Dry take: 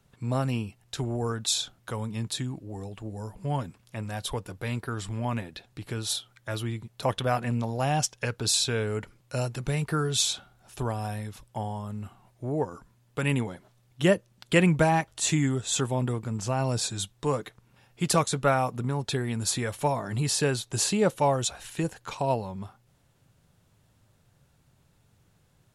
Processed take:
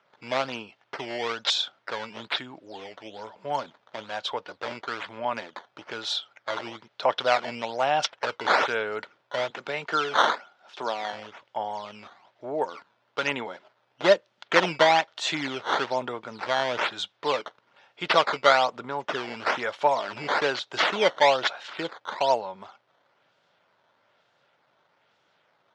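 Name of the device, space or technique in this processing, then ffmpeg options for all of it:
circuit-bent sampling toy: -filter_complex "[0:a]asettb=1/sr,asplit=3[link_01][link_02][link_03];[link_01]atrim=end=9.504[link_04];[link_02]atrim=start=9.5:end=11.13,asetpts=PTS-STARTPTS,afade=type=in:duration=0.004:curve=qsin,afade=type=out:start_time=1.626:duration=0.004:curve=qsin,highpass=frequency=150:width=0.5412,highpass=frequency=150:width=1.3066[link_05];[link_03]atrim=start=11.126[link_06];[link_04][link_05]acrossfade=duration=0.004:curve1=hsin:curve2=qsin[link_07];[link_07][link_06]acrossfade=duration=0.004:curve1=qsin:curve2=hsin,acrusher=samples=10:mix=1:aa=0.000001:lfo=1:lforange=16:lforate=1.1,highpass=450,equalizer=frequency=600:width_type=q:width=4:gain=5,equalizer=frequency=910:width_type=q:width=4:gain=4,equalizer=frequency=1400:width_type=q:width=4:gain=6,equalizer=frequency=2100:width_type=q:width=4:gain=3,equalizer=frequency=3300:width_type=q:width=4:gain=5,lowpass=frequency=5200:width=0.5412,lowpass=frequency=5200:width=1.3066,volume=2dB"

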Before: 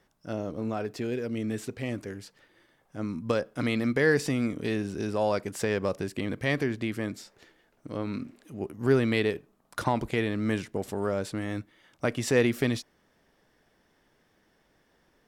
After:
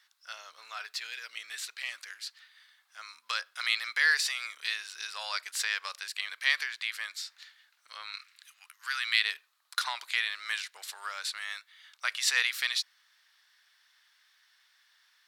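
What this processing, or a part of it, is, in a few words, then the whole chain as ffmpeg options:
headphones lying on a table: -filter_complex "[0:a]highpass=frequency=1300:width=0.5412,highpass=frequency=1300:width=1.3066,equalizer=frequency=4100:width_type=o:width=0.55:gain=9.5,asettb=1/sr,asplit=3[link_01][link_02][link_03];[link_01]atrim=end=8.114[link_04];[link_02]atrim=start=8.11:end=9.21,asetpts=PTS-STARTPTS,afade=type=in:duration=0.004:curve=qsin,afade=type=out:start_time=1.096:duration=0.004:curve=qsin,highpass=frequency=1100:width=0.5412,highpass=frequency=1100:width=1.3066[link_05];[link_03]atrim=start=9.206[link_06];[link_04][link_05]acrossfade=duration=0.004:curve1=hsin:curve2=qsin[link_07];[link_07][link_06]acrossfade=duration=0.004:curve1=qsin:curve2=hsin,volume=4dB"

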